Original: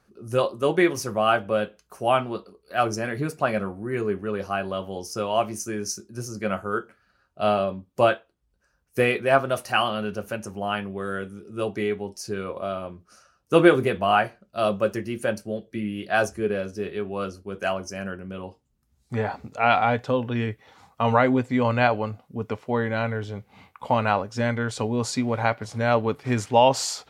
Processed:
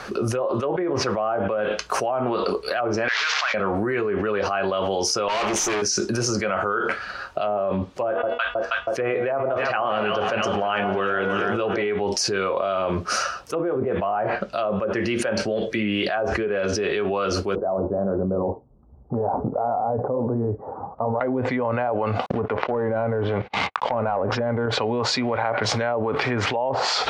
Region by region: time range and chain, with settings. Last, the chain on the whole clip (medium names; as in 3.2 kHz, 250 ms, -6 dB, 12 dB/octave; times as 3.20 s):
3.08–3.54 s: one-bit delta coder 32 kbps, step -30.5 dBFS + short-mantissa float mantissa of 6-bit + ladder high-pass 1 kHz, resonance 20%
5.28–5.82 s: rippled EQ curve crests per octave 0.74, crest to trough 7 dB + valve stage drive 38 dB, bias 0.7
8.07–11.88 s: distance through air 92 m + de-hum 242.4 Hz, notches 15 + echo whose repeats swap between lows and highs 160 ms, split 920 Hz, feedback 70%, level -11.5 dB
17.55–21.21 s: Bessel low-pass 550 Hz, order 8 + flange 1.4 Hz, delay 0.4 ms, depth 9 ms, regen -63%
22.26–24.66 s: gate -55 dBFS, range -39 dB + distance through air 100 m + waveshaping leveller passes 2
whole clip: low-pass that closes with the level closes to 740 Hz, closed at -16.5 dBFS; three-band isolator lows -12 dB, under 410 Hz, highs -14 dB, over 6 kHz; level flattener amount 100%; trim -7 dB